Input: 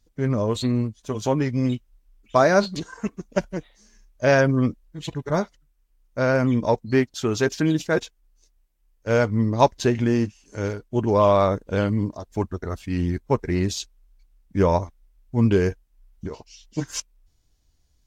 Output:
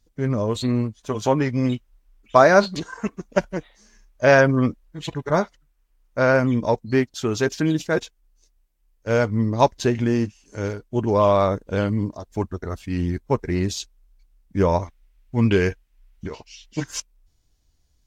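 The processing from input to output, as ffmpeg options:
ffmpeg -i in.wav -filter_complex "[0:a]asettb=1/sr,asplit=3[link_01][link_02][link_03];[link_01]atrim=end=0.684[link_04];[link_02]atrim=start=0.68:end=6.4,asetpts=PTS-STARTPTS,afade=type=in:duration=0.004:curve=qsin,afade=type=out:start_time=5.716:duration=0.004:curve=qsin,equalizer=frequency=1200:width_type=o:width=2.9:gain=5[link_05];[link_03]atrim=start=6.396[link_06];[link_04][link_05]acrossfade=duration=0.004:curve1=hsin:curve2=qsin[link_07];[link_07][link_06]acrossfade=duration=0.004:curve1=qsin:curve2=hsin,asettb=1/sr,asplit=3[link_08][link_09][link_10];[link_08]atrim=end=14.794[link_11];[link_09]atrim=start=14.79:end=16.84,asetpts=PTS-STARTPTS,afade=type=in:duration=0.004:curve=qsin,afade=type=out:start_time=2.046:duration=0.004:curve=qsin,equalizer=frequency=2400:width_type=o:width=1.6:gain=8.5[link_12];[link_10]atrim=start=16.836[link_13];[link_11][link_12]acrossfade=duration=0.004:curve1=hsin:curve2=qsin[link_14];[link_14][link_13]acrossfade=duration=0.004:curve1=qsin:curve2=hsin" out.wav

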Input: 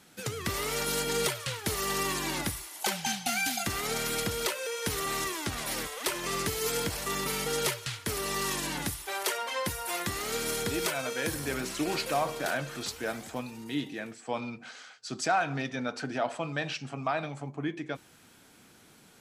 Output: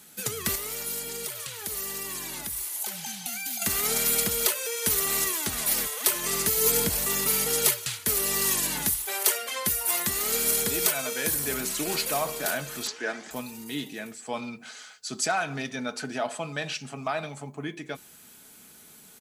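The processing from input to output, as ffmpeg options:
ffmpeg -i in.wav -filter_complex "[0:a]asettb=1/sr,asplit=3[link_01][link_02][link_03];[link_01]atrim=end=0.554[link_04];[link_02]atrim=start=0.55:end=3.62,asetpts=PTS-STARTPTS,afade=type=in:duration=0.004:curve=qsin,afade=type=out:start_time=3.066:duration=0.004:curve=qsin,acompressor=threshold=-38dB:ratio=4:attack=3.2:release=140:knee=1:detection=peak[link_05];[link_03]atrim=start=3.616[link_06];[link_04][link_05]acrossfade=duration=0.004:curve1=hsin:curve2=qsin[link_07];[link_07][link_06]acrossfade=duration=0.004:curve1=qsin:curve2=hsin,asettb=1/sr,asplit=3[link_08][link_09][link_10];[link_08]atrim=end=6.574[link_11];[link_09]atrim=start=6.57:end=7.06,asetpts=PTS-STARTPTS,afade=type=in:duration=0.004:curve=qsin,afade=type=out:start_time=0.486:duration=0.004:curve=qsin,lowshelf=frequency=450:gain=5.5[link_12];[link_10]atrim=start=7.056[link_13];[link_11][link_12]acrossfade=duration=0.004:curve1=hsin:curve2=qsin[link_14];[link_14][link_13]acrossfade=duration=0.004:curve1=qsin:curve2=hsin,asettb=1/sr,asplit=3[link_15][link_16][link_17];[link_15]atrim=end=9.364[link_18];[link_16]atrim=start=9.36:end=9.81,asetpts=PTS-STARTPTS,afade=type=in:duration=0.004:curve=qsin,afade=type=out:start_time=0.446:duration=0.004:curve=qsin,asuperstop=centerf=940:order=4:qfactor=4.7[link_19];[link_17]atrim=start=9.806[link_20];[link_18][link_19]acrossfade=duration=0.004:curve1=hsin:curve2=qsin[link_21];[link_21][link_20]acrossfade=duration=0.004:curve1=qsin:curve2=hsin,asettb=1/sr,asplit=3[link_22][link_23][link_24];[link_22]atrim=end=12.874[link_25];[link_23]atrim=start=12.87:end=13.31,asetpts=PTS-STARTPTS,afade=type=in:duration=0.004:curve=qsin,afade=type=out:start_time=0.436:duration=0.004:curve=qsin,highpass=260,equalizer=frequency=330:width_type=q:width=4:gain=5,equalizer=frequency=1700:width_type=q:width=4:gain=7,equalizer=frequency=4000:width_type=q:width=4:gain=-4,lowpass=frequency=5900:width=0.5412,lowpass=frequency=5900:width=1.3066[link_26];[link_24]atrim=start=13.306[link_27];[link_25][link_26]acrossfade=duration=0.004:curve1=hsin:curve2=qsin[link_28];[link_28][link_27]acrossfade=duration=0.004:curve1=qsin:curve2=hsin,aemphasis=mode=production:type=50fm,bandreject=frequency=5300:width=25,aecho=1:1:4.7:0.32" out.wav

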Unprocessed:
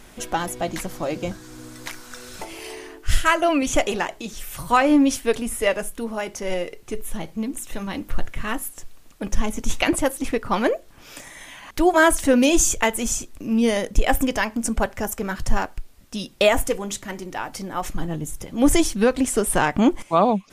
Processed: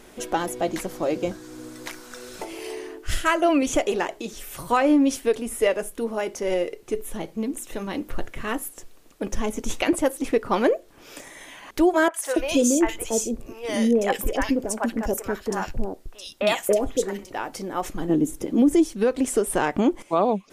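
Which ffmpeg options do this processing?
ffmpeg -i in.wav -filter_complex "[0:a]asettb=1/sr,asplit=3[link_01][link_02][link_03];[link_01]atrim=end=12.084[link_04];[link_02]atrim=start=12.08:end=17.34,asetpts=PTS-STARTPTS,afade=type=in:duration=0.004:curve=qsin,afade=type=out:start_time=5.256:duration=0.004:curve=qsin,acrossover=split=630|2300[link_05][link_06][link_07];[link_07]adelay=60[link_08];[link_05]adelay=280[link_09];[link_09][link_06][link_08]amix=inputs=3:normalize=0,atrim=end_sample=231966[link_10];[link_03]atrim=start=17.336[link_11];[link_04][link_10]acrossfade=duration=0.004:curve1=hsin:curve2=qsin[link_12];[link_12][link_11]acrossfade=duration=0.004:curve1=qsin:curve2=hsin,asettb=1/sr,asplit=3[link_13][link_14][link_15];[link_13]atrim=end=18.094[link_16];[link_14]atrim=start=18.09:end=18.85,asetpts=PTS-STARTPTS,afade=type=in:duration=0.004:curve=qsin,afade=type=out:start_time=0.756:duration=0.004:curve=qsin,equalizer=frequency=290:width_type=o:width=0.89:gain=12.5[link_17];[link_15]atrim=start=18.846[link_18];[link_16][link_17]acrossfade=duration=0.004:curve1=hsin:curve2=qsin[link_19];[link_19][link_18]acrossfade=duration=0.004:curve1=qsin:curve2=hsin,equalizer=frequency=390:width_type=o:width=1.3:gain=8.5,alimiter=limit=-6.5dB:level=0:latency=1:release=313,lowshelf=frequency=220:gain=-5,volume=-2.5dB" out.wav

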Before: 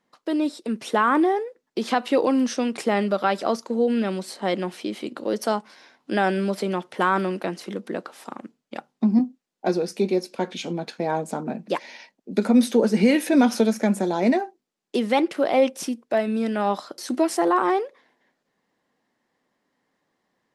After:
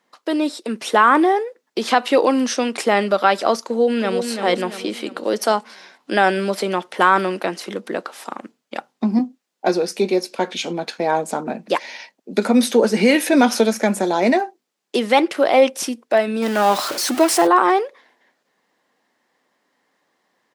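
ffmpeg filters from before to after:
ffmpeg -i in.wav -filter_complex "[0:a]asplit=2[link_01][link_02];[link_02]afade=type=in:start_time=3.66:duration=0.01,afade=type=out:start_time=4.27:duration=0.01,aecho=0:1:340|680|1020|1360|1700:0.473151|0.212918|0.0958131|0.0431159|0.0194022[link_03];[link_01][link_03]amix=inputs=2:normalize=0,asettb=1/sr,asplit=3[link_04][link_05][link_06];[link_04]atrim=end=16.424[link_07];[link_05]atrim=start=16.42:end=17.47,asetpts=PTS-STARTPTS,afade=type=in:duration=0.004:curve=qsin,afade=type=out:start_time=1.046:duration=0.004:curve=qsin,aeval=exprs='val(0)+0.5*0.0376*sgn(val(0))':channel_layout=same[link_08];[link_06]atrim=start=17.466[link_09];[link_07][link_08]acrossfade=duration=0.004:curve1=hsin:curve2=qsin[link_10];[link_10][link_09]acrossfade=duration=0.004:curve1=qsin:curve2=hsin,highpass=frequency=470:poles=1,volume=8dB" out.wav

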